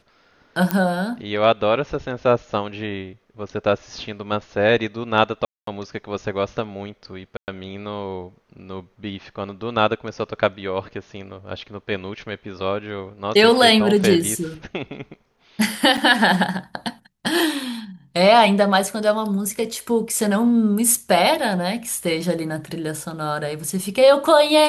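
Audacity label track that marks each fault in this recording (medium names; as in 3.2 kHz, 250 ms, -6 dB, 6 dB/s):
0.710000	0.710000	pop -5 dBFS
5.450000	5.670000	dropout 223 ms
7.370000	7.480000	dropout 109 ms
15.970000	15.980000	dropout 6.1 ms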